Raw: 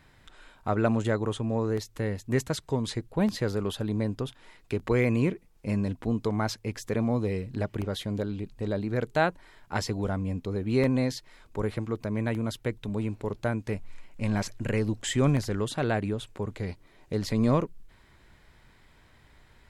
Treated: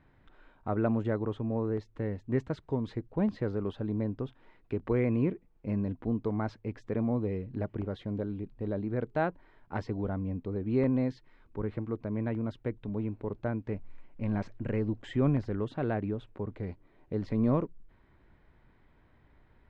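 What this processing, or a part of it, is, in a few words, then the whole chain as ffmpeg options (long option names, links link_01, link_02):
phone in a pocket: -filter_complex "[0:a]asettb=1/sr,asplit=3[link_01][link_02][link_03];[link_01]atrim=end=11.084[link_04];[link_02]atrim=start=11.08:end=11.75,asetpts=PTS-STARTPTS,afade=type=in:duration=0.004:curve=qsin,afade=type=out:start_time=0.666:duration=0.004:curve=qsin,equalizer=frequency=640:width_type=o:width=0.87:gain=-5.5[link_05];[link_03]atrim=start=11.746[link_06];[link_04][link_05]acrossfade=duration=0.004:curve1=hsin:curve2=qsin[link_07];[link_07][link_06]acrossfade=duration=0.004:curve1=qsin:curve2=hsin,lowpass=3300,equalizer=frequency=290:width_type=o:width=0.76:gain=3,highshelf=frequency=2100:gain=-11.5,volume=-4dB"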